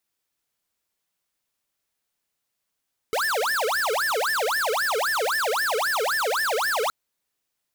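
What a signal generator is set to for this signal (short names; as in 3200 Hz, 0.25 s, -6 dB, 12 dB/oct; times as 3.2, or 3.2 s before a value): siren wail 424–1790 Hz 3.8/s square -24 dBFS 3.77 s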